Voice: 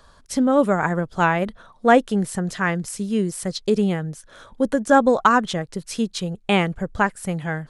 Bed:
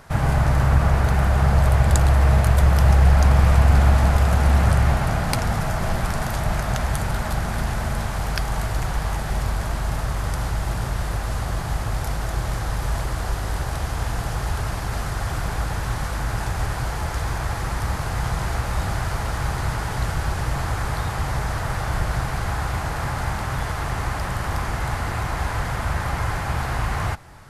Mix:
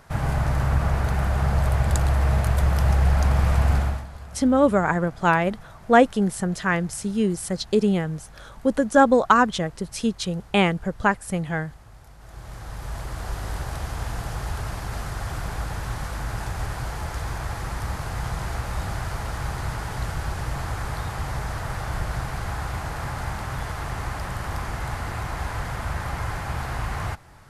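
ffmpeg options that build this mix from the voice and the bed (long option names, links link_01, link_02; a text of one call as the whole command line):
ffmpeg -i stem1.wav -i stem2.wav -filter_complex "[0:a]adelay=4050,volume=-0.5dB[link_01];[1:a]volume=13.5dB,afade=type=out:start_time=3.72:duration=0.34:silence=0.125893,afade=type=in:start_time=12.17:duration=1.28:silence=0.125893[link_02];[link_01][link_02]amix=inputs=2:normalize=0" out.wav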